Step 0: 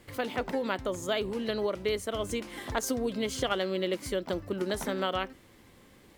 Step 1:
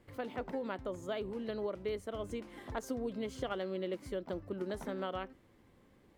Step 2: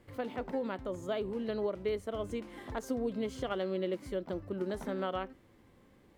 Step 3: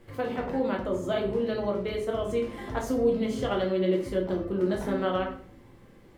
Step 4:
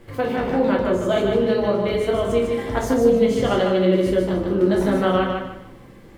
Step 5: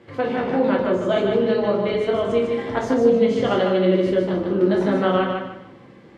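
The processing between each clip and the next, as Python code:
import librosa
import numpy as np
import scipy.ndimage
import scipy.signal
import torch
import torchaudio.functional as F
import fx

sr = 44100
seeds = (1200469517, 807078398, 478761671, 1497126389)

y1 = fx.high_shelf(x, sr, hz=2100.0, db=-11.0)
y1 = y1 * librosa.db_to_amplitude(-6.5)
y2 = fx.hpss(y1, sr, part='harmonic', gain_db=4)
y3 = fx.room_shoebox(y2, sr, seeds[0], volume_m3=63.0, walls='mixed', distance_m=0.72)
y3 = y3 * librosa.db_to_amplitude(4.0)
y4 = fx.echo_feedback(y3, sr, ms=150, feedback_pct=30, wet_db=-4.5)
y4 = y4 * librosa.db_to_amplitude(7.5)
y5 = fx.bandpass_edges(y4, sr, low_hz=130.0, high_hz=4700.0)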